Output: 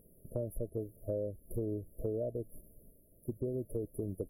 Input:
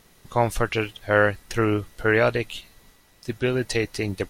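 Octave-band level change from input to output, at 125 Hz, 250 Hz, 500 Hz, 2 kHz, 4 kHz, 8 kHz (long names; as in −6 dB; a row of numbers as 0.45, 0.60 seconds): −12.5 dB, −13.0 dB, −14.0 dB, below −40 dB, below −40 dB, −19.5 dB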